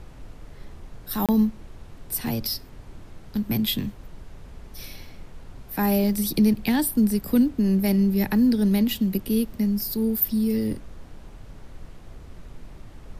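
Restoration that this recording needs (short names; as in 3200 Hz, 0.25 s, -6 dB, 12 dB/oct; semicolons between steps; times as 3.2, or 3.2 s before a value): interpolate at 1.26, 27 ms; noise print and reduce 26 dB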